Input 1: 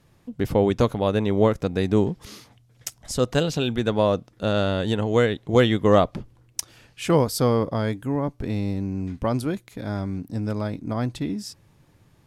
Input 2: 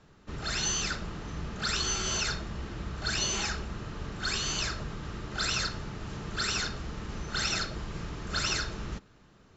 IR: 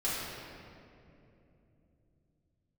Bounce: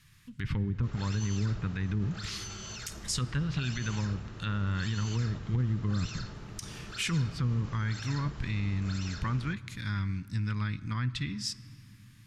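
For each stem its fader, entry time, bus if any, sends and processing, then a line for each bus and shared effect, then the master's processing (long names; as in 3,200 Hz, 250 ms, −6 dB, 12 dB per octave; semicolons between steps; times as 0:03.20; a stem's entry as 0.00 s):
−1.5 dB, 0.00 s, send −24 dB, treble cut that deepens with the level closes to 370 Hz, closed at −15 dBFS; drawn EQ curve 140 Hz 0 dB, 680 Hz −29 dB, 1,000 Hz −5 dB, 1,800 Hz +6 dB
−7.0 dB, 0.55 s, no send, brickwall limiter −27 dBFS, peak gain reduction 10.5 dB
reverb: on, RT60 2.9 s, pre-delay 5 ms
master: brickwall limiter −21.5 dBFS, peak gain reduction 17.5 dB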